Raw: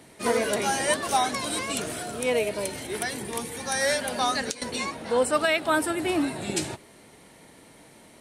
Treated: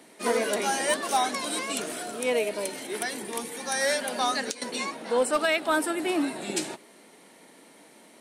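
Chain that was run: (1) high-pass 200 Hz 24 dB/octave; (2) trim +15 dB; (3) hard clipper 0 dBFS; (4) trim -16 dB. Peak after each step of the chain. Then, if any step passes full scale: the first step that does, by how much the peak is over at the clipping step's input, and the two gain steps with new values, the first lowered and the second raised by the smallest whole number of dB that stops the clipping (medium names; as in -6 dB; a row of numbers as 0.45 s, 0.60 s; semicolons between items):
-10.5 dBFS, +4.5 dBFS, 0.0 dBFS, -16.0 dBFS; step 2, 4.5 dB; step 2 +10 dB, step 4 -11 dB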